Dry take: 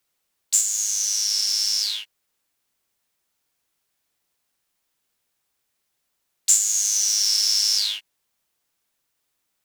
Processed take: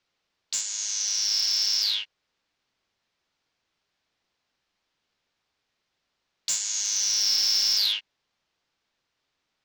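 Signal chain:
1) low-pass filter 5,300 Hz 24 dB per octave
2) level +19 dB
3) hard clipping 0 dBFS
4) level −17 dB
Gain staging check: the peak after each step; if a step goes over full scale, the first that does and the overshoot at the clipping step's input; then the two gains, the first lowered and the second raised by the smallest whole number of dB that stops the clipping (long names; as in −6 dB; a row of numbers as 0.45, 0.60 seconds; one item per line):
−10.5, +8.5, 0.0, −17.0 dBFS
step 2, 8.5 dB
step 2 +10 dB, step 4 −8 dB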